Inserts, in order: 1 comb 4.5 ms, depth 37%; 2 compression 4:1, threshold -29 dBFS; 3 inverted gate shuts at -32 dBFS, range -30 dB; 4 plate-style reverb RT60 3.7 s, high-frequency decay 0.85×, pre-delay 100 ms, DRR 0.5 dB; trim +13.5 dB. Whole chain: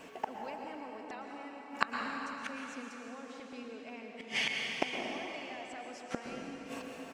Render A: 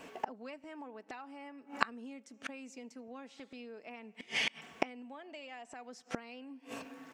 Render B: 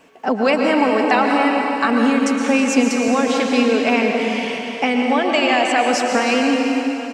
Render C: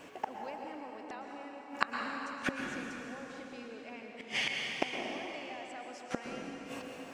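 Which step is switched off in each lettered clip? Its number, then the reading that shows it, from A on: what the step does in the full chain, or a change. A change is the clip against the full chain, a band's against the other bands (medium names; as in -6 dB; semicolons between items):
4, crest factor change +3.0 dB; 3, momentary loudness spread change -8 LU; 1, 125 Hz band +2.5 dB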